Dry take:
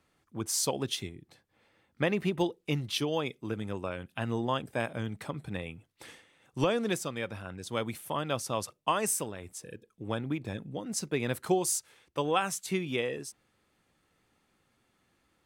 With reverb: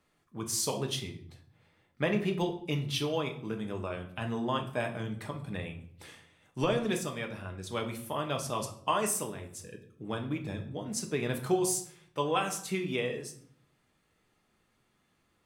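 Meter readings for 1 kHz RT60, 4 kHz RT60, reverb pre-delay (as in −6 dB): 0.60 s, 0.45 s, 5 ms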